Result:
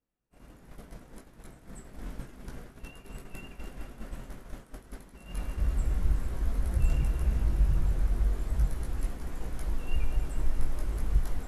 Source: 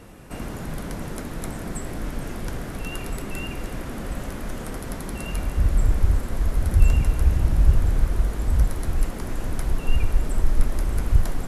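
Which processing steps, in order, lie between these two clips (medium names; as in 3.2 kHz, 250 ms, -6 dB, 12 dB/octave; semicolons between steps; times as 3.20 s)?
chorus voices 6, 0.3 Hz, delay 19 ms, depth 4.3 ms; feedback echo behind a low-pass 209 ms, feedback 59%, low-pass 3.4 kHz, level -10 dB; expander -24 dBFS; trim -7 dB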